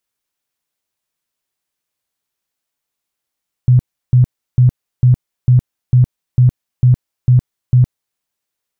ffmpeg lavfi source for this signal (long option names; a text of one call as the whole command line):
ffmpeg -f lavfi -i "aevalsrc='0.562*sin(2*PI*125*mod(t,0.45))*lt(mod(t,0.45),14/125)':duration=4.5:sample_rate=44100" out.wav